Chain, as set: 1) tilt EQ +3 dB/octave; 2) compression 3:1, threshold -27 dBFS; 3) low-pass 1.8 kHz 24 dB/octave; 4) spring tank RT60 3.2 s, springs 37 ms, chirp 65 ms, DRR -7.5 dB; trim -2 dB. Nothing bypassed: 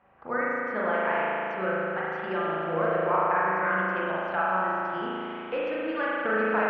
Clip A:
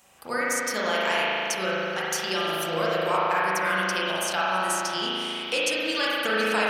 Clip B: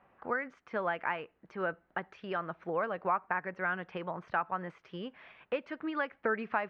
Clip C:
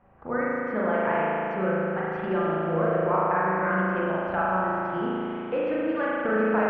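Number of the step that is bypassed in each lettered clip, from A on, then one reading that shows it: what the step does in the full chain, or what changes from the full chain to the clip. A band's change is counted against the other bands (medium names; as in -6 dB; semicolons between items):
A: 3, 2 kHz band +3.0 dB; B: 4, momentary loudness spread change +4 LU; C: 1, 125 Hz band +6.5 dB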